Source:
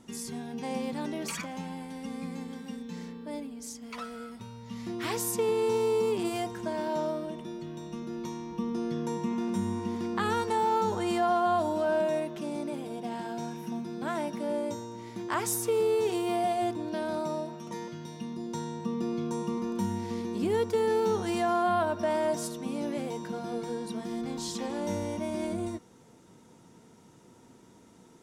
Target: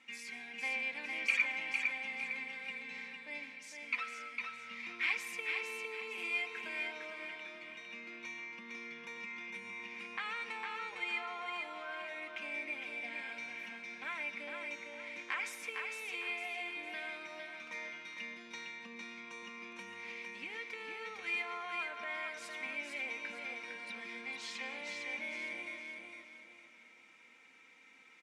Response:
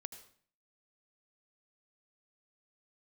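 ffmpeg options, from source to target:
-filter_complex "[0:a]acompressor=threshold=-32dB:ratio=6,bandpass=f=2.3k:t=q:w=9.4:csg=0,aecho=1:1:3.8:0.55,aecho=1:1:456|912|1368|1824:0.596|0.208|0.073|0.0255,asplit=2[a][b];[1:a]atrim=start_sample=2205,asetrate=29547,aresample=44100[c];[b][c]afir=irnorm=-1:irlink=0,volume=-2.5dB[d];[a][d]amix=inputs=2:normalize=0,volume=12dB"

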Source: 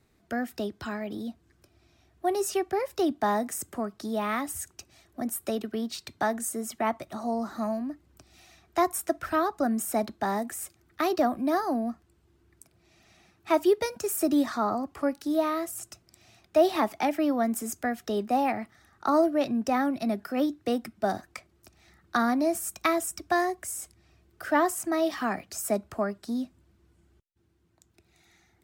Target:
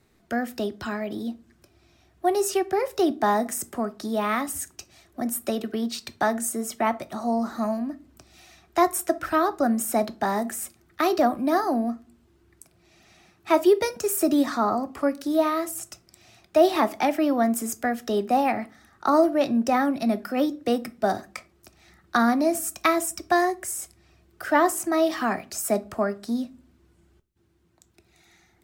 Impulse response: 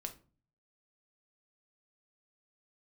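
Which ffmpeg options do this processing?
-filter_complex "[0:a]asplit=2[a][b];[b]equalizer=f=81:t=o:w=1.8:g=-8.5[c];[1:a]atrim=start_sample=2205[d];[c][d]afir=irnorm=-1:irlink=0,volume=-1dB[e];[a][e]amix=inputs=2:normalize=0"

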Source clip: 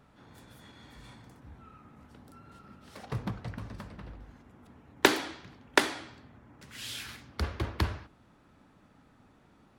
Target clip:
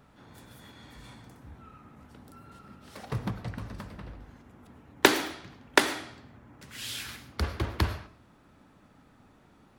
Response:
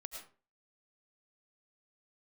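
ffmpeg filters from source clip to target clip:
-filter_complex "[0:a]asplit=2[a][b];[1:a]atrim=start_sample=2205,highshelf=f=8k:g=11.5[c];[b][c]afir=irnorm=-1:irlink=0,volume=-5.5dB[d];[a][d]amix=inputs=2:normalize=0"

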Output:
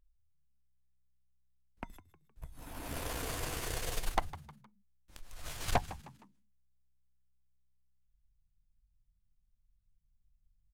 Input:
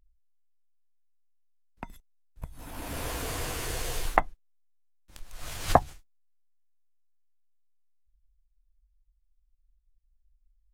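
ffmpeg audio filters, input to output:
-filter_complex "[0:a]aeval=exprs='(tanh(12.6*val(0)+0.8)-tanh(0.8))/12.6':c=same,asplit=4[a][b][c][d];[b]adelay=155,afreqshift=64,volume=-16.5dB[e];[c]adelay=310,afreqshift=128,volume=-24.5dB[f];[d]adelay=465,afreqshift=192,volume=-32.4dB[g];[a][e][f][g]amix=inputs=4:normalize=0"

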